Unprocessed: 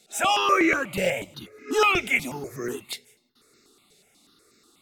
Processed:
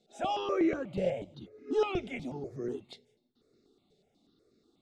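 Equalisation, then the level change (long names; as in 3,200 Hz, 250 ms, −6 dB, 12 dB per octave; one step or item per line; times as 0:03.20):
head-to-tape spacing loss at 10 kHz 29 dB
flat-topped bell 1,600 Hz −11 dB
−3.5 dB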